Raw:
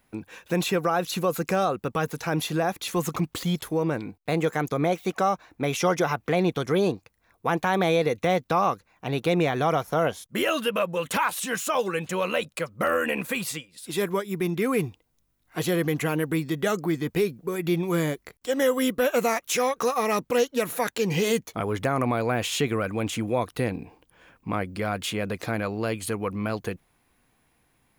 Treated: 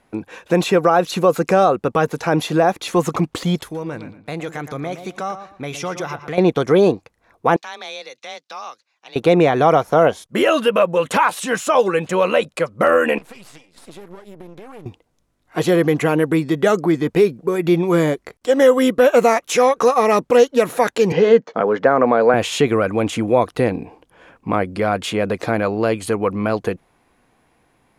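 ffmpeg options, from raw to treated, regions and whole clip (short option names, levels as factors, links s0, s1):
-filter_complex "[0:a]asettb=1/sr,asplit=3[s0][s1][s2];[s0]atrim=end=3.634[s3];[s1]atrim=start=3.63:end=6.38,asetpts=PTS-STARTPTS,afade=t=in:d=0.004:c=qsin,afade=t=out:st=2.746:d=0.004:c=qsin,equalizer=f=500:w=0.41:g=-10.5,acompressor=threshold=0.0141:ratio=1.5:attack=3.2:release=140:knee=1:detection=peak,asplit=2[s4][s5];[s5]adelay=116,lowpass=f=3600:p=1,volume=0.299,asplit=2[s6][s7];[s7]adelay=116,lowpass=f=3600:p=1,volume=0.27,asplit=2[s8][s9];[s9]adelay=116,lowpass=f=3600:p=1,volume=0.27[s10];[s4][s6][s8][s10]amix=inputs=4:normalize=0,atrim=end_sample=121275[s11];[s2]atrim=start=6.376[s12];[s3][s11]acrossfade=d=0.004:c1=hsin:c2=qsin[s13];[s13][s12]acrossfade=d=0.004:c1=qsin:c2=hsin,asettb=1/sr,asplit=3[s14][s15][s16];[s14]atrim=end=7.564[s17];[s15]atrim=start=7.56:end=9.16,asetpts=PTS-STARTPTS,afade=t=in:d=0.004:c=qsin,afade=t=out:st=1.596:d=0.004:c=qsin,bandpass=f=4800:t=q:w=1.8,afreqshift=26[s18];[s16]atrim=start=9.156[s19];[s17][s18]acrossfade=d=0.004:c1=hsin:c2=qsin[s20];[s20][s19]acrossfade=d=0.004:c1=qsin:c2=hsin,asettb=1/sr,asplit=3[s21][s22][s23];[s21]atrim=end=13.184[s24];[s22]atrim=start=13.18:end=14.86,asetpts=PTS-STARTPTS,afade=t=in:d=0.004:c=qsin,afade=t=out:st=1.676:d=0.004:c=qsin,acompressor=threshold=0.01:ratio=8:attack=3.2:release=140:knee=1:detection=peak,aeval=exprs='max(val(0),0)':c=same[s25];[s23]atrim=start=14.856[s26];[s24][s25]acrossfade=d=0.004:c1=hsin:c2=qsin[s27];[s27][s26]acrossfade=d=0.004:c1=qsin:c2=hsin,asettb=1/sr,asplit=3[s28][s29][s30];[s28]atrim=end=21.124[s31];[s29]atrim=start=21.12:end=22.34,asetpts=PTS-STARTPTS,afade=t=in:d=0.004:c=qsin,afade=t=out:st=1.216:d=0.004:c=qsin,acrossover=split=4000[s32][s33];[s33]acompressor=threshold=0.00282:ratio=4:attack=1:release=60[s34];[s32][s34]amix=inputs=2:normalize=0,highpass=f=170:w=0.5412,highpass=f=170:w=1.3066,equalizer=f=330:t=q:w=4:g=-6,equalizer=f=490:t=q:w=4:g=6,equalizer=f=1600:t=q:w=4:g=5,equalizer=f=2400:t=q:w=4:g=-6,equalizer=f=3500:t=q:w=4:g=-4,lowpass=f=6100:w=0.5412,lowpass=f=6100:w=1.3066[s35];[s30]atrim=start=22.336[s36];[s31][s35]acrossfade=d=0.004:c1=hsin:c2=qsin[s37];[s37][s36]acrossfade=d=0.004:c1=qsin:c2=hsin,lowpass=10000,equalizer=f=560:t=o:w=2.9:g=7.5,volume=1.5"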